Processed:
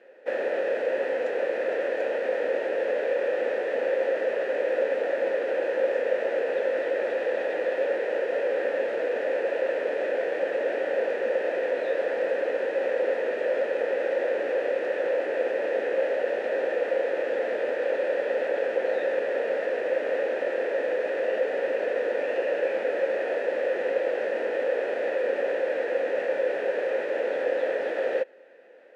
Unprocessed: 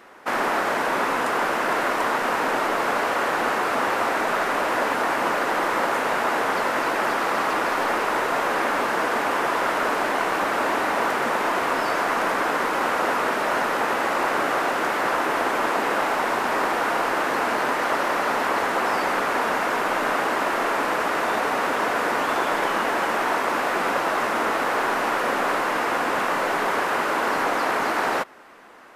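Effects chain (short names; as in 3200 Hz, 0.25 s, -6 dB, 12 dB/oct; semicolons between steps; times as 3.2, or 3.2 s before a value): formant shift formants -4 st; vowel filter e; gain +6 dB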